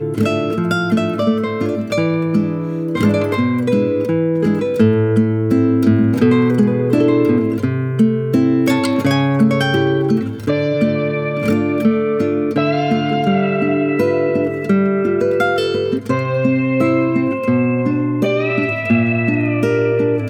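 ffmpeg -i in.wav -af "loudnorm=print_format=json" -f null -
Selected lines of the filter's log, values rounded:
"input_i" : "-16.2",
"input_tp" : "-1.6",
"input_lra" : "2.3",
"input_thresh" : "-26.2",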